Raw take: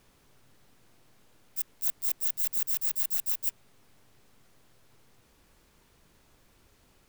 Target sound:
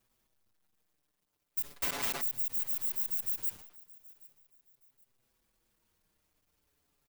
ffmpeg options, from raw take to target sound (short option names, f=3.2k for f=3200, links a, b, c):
-filter_complex "[0:a]aeval=exprs='val(0)+0.5*0.0126*sgn(val(0))':c=same,agate=range=-37dB:threshold=-38dB:ratio=16:detection=peak,highshelf=f=11k:g=6.5,acompressor=threshold=-37dB:ratio=2.5,asettb=1/sr,asplit=3[a][b][c];[a]atrim=end=1.764[d];[b]atrim=start=1.76:end=2.21,asetpts=PTS-STARTPTS,afade=t=in:d=0.004:c=qsin,afade=t=out:st=0.446:d=0.004:c=qsin,asplit=2[e][f];[f]highpass=f=720:p=1,volume=30dB,asoftclip=type=tanh:threshold=-8.5dB[g];[e][g]amix=inputs=2:normalize=0,lowpass=f=2.1k:p=1,volume=-6dB[h];[c]atrim=start=2.206[i];[d][h]acrossfade=d=0.004:c1=hsin:c2=qsin[j];[j][i]acrossfade=d=0.004:c1=qsin:c2=hsin,aecho=1:1:774|1548:0.0841|0.0252,asplit=2[k][l];[l]adelay=5.7,afreqshift=-0.37[m];[k][m]amix=inputs=2:normalize=1,volume=5.5dB"